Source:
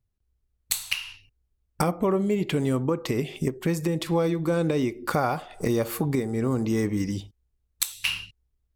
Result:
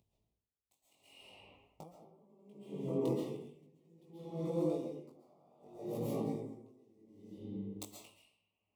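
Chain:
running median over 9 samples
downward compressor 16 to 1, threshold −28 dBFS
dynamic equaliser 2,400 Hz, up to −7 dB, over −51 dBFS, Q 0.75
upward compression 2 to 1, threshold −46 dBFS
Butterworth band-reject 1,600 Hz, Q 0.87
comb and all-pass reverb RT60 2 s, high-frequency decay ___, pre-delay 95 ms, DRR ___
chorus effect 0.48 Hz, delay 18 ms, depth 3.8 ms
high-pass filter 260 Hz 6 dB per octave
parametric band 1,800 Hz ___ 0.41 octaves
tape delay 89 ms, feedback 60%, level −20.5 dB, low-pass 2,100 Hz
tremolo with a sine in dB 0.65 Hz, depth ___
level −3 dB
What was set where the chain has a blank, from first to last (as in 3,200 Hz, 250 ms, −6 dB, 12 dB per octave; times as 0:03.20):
0.4×, −7 dB, +10 dB, 32 dB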